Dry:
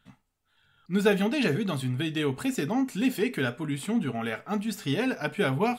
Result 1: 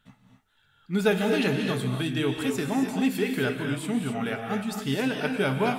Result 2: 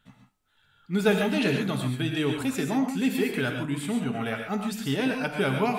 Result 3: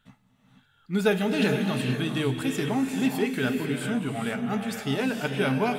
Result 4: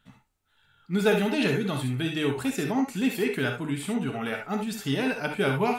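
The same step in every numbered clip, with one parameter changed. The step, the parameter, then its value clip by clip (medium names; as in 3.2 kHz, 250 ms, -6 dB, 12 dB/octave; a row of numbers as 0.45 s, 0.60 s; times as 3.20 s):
gated-style reverb, gate: 290 ms, 160 ms, 510 ms, 90 ms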